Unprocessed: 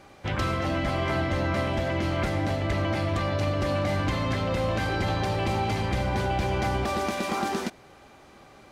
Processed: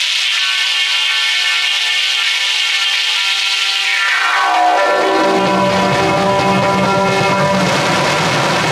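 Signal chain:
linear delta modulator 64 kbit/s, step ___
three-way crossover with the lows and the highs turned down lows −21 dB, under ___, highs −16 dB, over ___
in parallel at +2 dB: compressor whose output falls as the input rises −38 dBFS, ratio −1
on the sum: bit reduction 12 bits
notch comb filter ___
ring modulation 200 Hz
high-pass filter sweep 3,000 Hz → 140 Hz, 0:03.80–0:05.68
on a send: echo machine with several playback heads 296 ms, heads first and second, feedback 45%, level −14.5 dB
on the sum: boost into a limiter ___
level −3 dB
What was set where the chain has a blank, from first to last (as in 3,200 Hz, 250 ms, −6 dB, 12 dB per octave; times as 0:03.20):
−31 dBFS, 290 Hz, 6,300 Hz, 210 Hz, +27 dB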